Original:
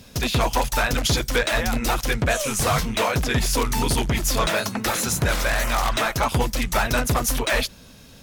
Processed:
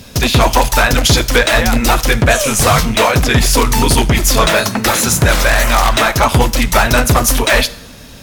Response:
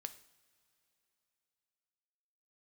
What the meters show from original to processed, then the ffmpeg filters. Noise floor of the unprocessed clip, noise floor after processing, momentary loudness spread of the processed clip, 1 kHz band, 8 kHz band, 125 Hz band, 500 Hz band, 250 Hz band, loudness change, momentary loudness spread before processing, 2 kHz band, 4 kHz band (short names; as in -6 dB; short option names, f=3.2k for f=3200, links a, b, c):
-47 dBFS, -35 dBFS, 2 LU, +10.5 dB, +10.5 dB, +10.5 dB, +10.0 dB, +10.5 dB, +10.5 dB, 2 LU, +10.5 dB, +10.5 dB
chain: -filter_complex "[0:a]asplit=2[a][b];[1:a]atrim=start_sample=2205[c];[b][c]afir=irnorm=-1:irlink=0,volume=9dB[d];[a][d]amix=inputs=2:normalize=0,volume=1.5dB"